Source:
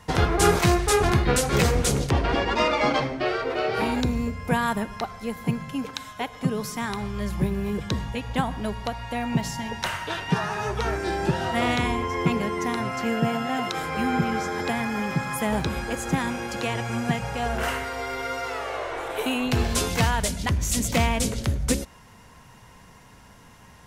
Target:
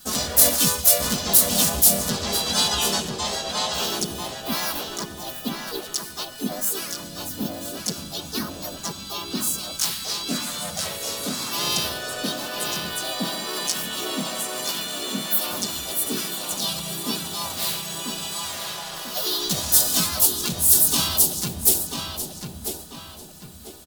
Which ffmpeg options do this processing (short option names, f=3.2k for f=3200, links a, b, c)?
-filter_complex "[0:a]equalizer=f=4.5k:t=o:w=2.3:g=-5.5,aecho=1:1:6.8:0.81,asetrate=62367,aresample=44100,atempo=0.707107,aexciter=amount=9.4:drive=6.6:freq=3.4k,asplit=3[a][b][c];[b]asetrate=37084,aresample=44100,atempo=1.18921,volume=-6dB[d];[c]asetrate=52444,aresample=44100,atempo=0.840896,volume=-3dB[e];[a][d][e]amix=inputs=3:normalize=0,asplit=2[f][g];[g]adelay=993,lowpass=f=3.5k:p=1,volume=-4dB,asplit=2[h][i];[i]adelay=993,lowpass=f=3.5k:p=1,volume=0.42,asplit=2[j][k];[k]adelay=993,lowpass=f=3.5k:p=1,volume=0.42,asplit=2[l][m];[m]adelay=993,lowpass=f=3.5k:p=1,volume=0.42,asplit=2[n][o];[o]adelay=993,lowpass=f=3.5k:p=1,volume=0.42[p];[h][j][l][n][p]amix=inputs=5:normalize=0[q];[f][q]amix=inputs=2:normalize=0,volume=-11dB"